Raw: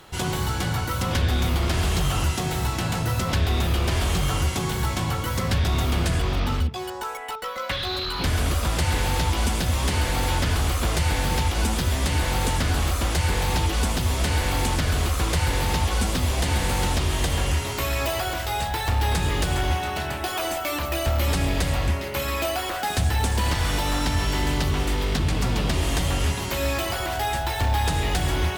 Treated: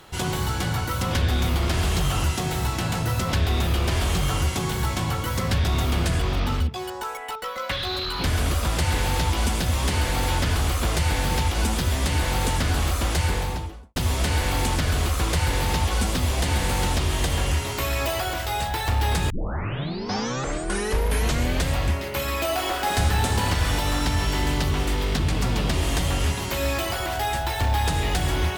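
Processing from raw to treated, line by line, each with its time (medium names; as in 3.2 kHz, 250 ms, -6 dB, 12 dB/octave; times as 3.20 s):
13.20–13.96 s: studio fade out
19.30 s: tape start 2.44 s
22.44–23.35 s: reverb throw, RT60 2.6 s, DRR 0.5 dB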